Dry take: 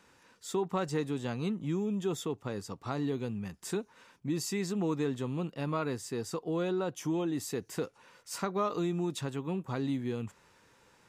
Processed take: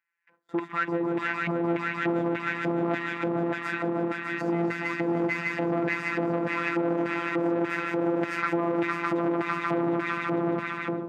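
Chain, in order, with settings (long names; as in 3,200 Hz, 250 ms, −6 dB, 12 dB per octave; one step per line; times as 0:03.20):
echo that builds up and dies away 151 ms, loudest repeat 5, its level −7 dB
auto-filter band-pass square 1.7 Hz 540–2,100 Hz
brickwall limiter −32 dBFS, peak gain reduction 8.5 dB
parametric band 1,000 Hz +12.5 dB 1.9 octaves
phases set to zero 170 Hz
high-pass filter 79 Hz 24 dB per octave
noise gate with hold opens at −48 dBFS
on a send at −14 dB: convolution reverb RT60 0.20 s, pre-delay 3 ms
on the sum: automatic gain control gain up to 13 dB
octave-band graphic EQ 125/250/500/1,000/2,000/4,000/8,000 Hz +8/+10/−9/−6/+6/−5/−8 dB
saturating transformer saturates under 740 Hz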